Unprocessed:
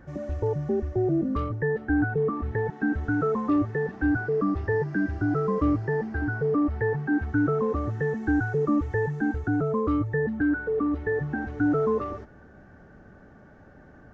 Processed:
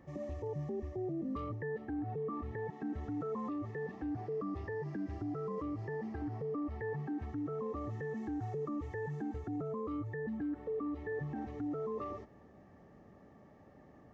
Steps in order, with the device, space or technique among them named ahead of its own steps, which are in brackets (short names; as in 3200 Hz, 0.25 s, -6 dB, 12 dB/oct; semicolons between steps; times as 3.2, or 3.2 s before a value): PA system with an anti-feedback notch (HPF 120 Hz 6 dB/oct; Butterworth band-stop 1500 Hz, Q 4.1; limiter -26 dBFS, peak gain reduction 11 dB); gain -6 dB